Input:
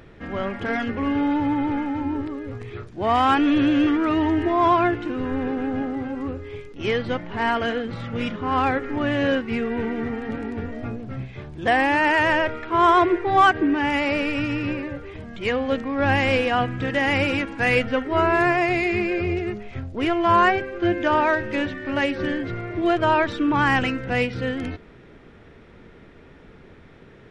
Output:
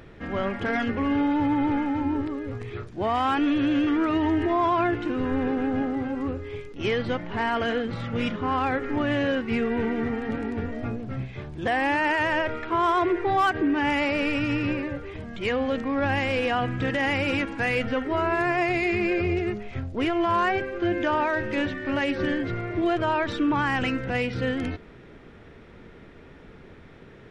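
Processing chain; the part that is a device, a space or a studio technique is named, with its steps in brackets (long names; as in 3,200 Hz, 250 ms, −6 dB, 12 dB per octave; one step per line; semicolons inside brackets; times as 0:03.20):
clipper into limiter (hard clipping −10 dBFS, distortion −34 dB; brickwall limiter −16.5 dBFS, peak gain reduction 6.5 dB)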